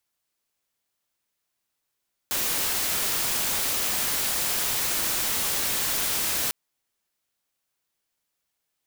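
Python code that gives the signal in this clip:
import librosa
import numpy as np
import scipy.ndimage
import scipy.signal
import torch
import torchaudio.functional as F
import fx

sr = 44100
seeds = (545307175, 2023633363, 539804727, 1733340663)

y = fx.noise_colour(sr, seeds[0], length_s=4.2, colour='white', level_db=-26.0)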